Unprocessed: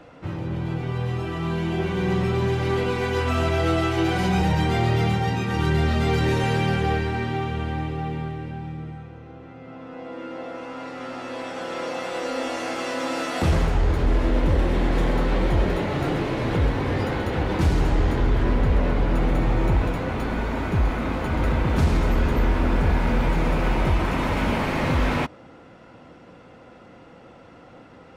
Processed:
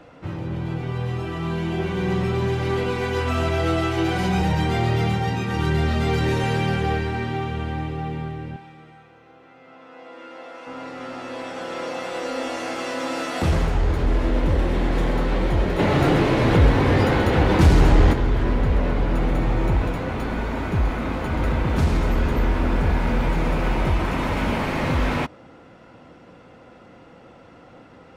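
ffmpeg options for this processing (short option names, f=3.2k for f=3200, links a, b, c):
-filter_complex "[0:a]asettb=1/sr,asplit=3[a][b][c];[a]atrim=end=8.564[d];[b]atrim=start=8.56:end=10.67,asetpts=PTS-STARTPTS,afade=t=in:d=0.004:c=qsin,afade=t=out:st=2.106:d=0.004:c=qsin,highpass=f=860:p=1[e];[c]atrim=start=10.666[f];[d][e]acrossfade=d=0.004:c1=hsin:c2=qsin[g];[g][f]acrossfade=d=0.004:c1=qsin:c2=hsin,asplit=3[h][i][j];[h]afade=t=out:st=15.78:d=0.02[k];[i]acontrast=72,afade=t=in:st=15.78:d=0.02,afade=t=out:st=18.12:d=0.02[l];[j]afade=t=in:st=18.12:d=0.02[m];[k][l][m]amix=inputs=3:normalize=0"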